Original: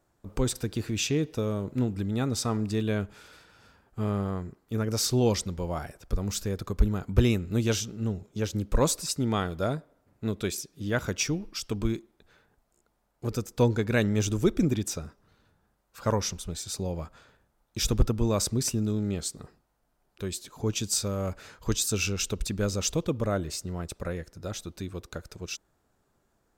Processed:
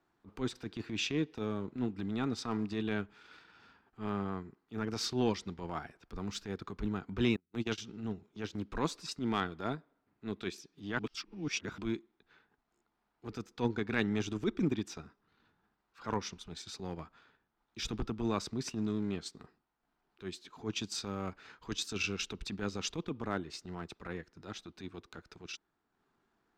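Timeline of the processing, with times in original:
7.36–7.78 s: gate -27 dBFS, range -36 dB
10.99–11.78 s: reverse
whole clip: three-band isolator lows -13 dB, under 190 Hz, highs -22 dB, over 4.8 kHz; transient shaper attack -10 dB, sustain -6 dB; peaking EQ 560 Hz -12 dB 0.5 oct

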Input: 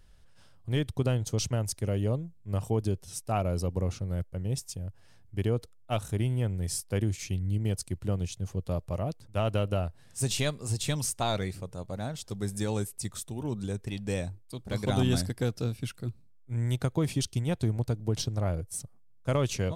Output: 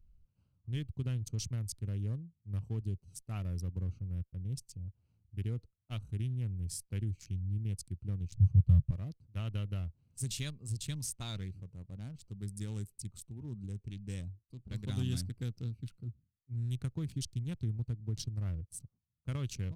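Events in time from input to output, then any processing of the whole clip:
8.32–8.91 s: resonant low shelf 190 Hz +11.5 dB, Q 3
whole clip: local Wiener filter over 25 samples; amplifier tone stack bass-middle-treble 6-0-2; trim +8 dB

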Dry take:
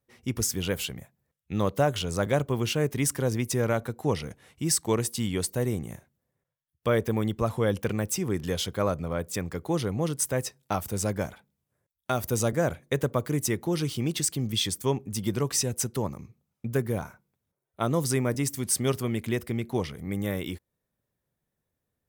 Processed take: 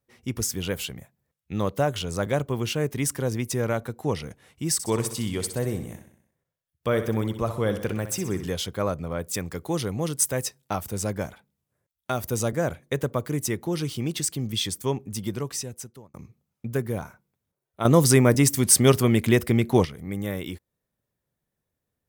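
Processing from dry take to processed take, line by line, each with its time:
4.73–8.47 s: feedback delay 63 ms, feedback 54%, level -10.5 dB
9.22–10.61 s: treble shelf 3.4 kHz +6 dB
15.11–16.14 s: fade out
17.85–19.85 s: gain +9 dB

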